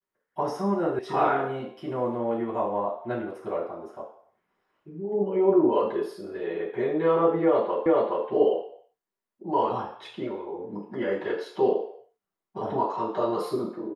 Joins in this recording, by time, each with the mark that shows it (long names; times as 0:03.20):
0:00.99: cut off before it has died away
0:07.86: the same again, the last 0.42 s